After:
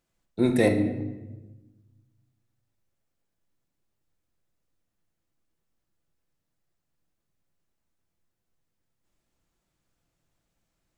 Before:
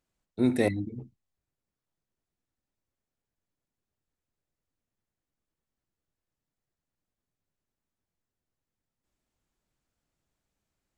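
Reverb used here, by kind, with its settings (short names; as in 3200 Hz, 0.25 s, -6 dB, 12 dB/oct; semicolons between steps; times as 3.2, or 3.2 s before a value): shoebox room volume 590 m³, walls mixed, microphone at 0.77 m; gain +3.5 dB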